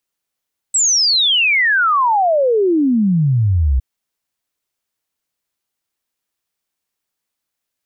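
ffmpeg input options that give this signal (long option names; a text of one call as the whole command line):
ffmpeg -f lavfi -i "aevalsrc='0.282*clip(min(t,3.06-t)/0.01,0,1)*sin(2*PI*8000*3.06/log(61/8000)*(exp(log(61/8000)*t/3.06)-1))':duration=3.06:sample_rate=44100" out.wav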